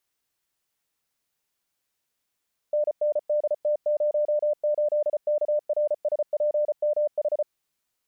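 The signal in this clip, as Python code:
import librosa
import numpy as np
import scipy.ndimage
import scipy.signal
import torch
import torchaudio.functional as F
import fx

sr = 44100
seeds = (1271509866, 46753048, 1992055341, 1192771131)

y = fx.morse(sr, text='NNDT08KRSPMH', wpm=34, hz=597.0, level_db=-20.0)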